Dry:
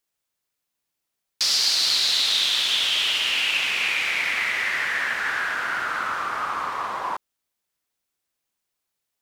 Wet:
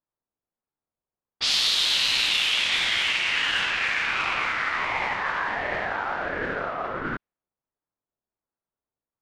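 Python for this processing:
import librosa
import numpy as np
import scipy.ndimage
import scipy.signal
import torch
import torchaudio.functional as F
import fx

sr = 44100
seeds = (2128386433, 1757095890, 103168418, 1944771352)

y = fx.env_lowpass(x, sr, base_hz=900.0, full_db=-17.5)
y = fx.formant_shift(y, sr, semitones=-3)
y = fx.ring_lfo(y, sr, carrier_hz=440.0, swing_pct=40, hz=1.4)
y = y * 10.0 ** (1.5 / 20.0)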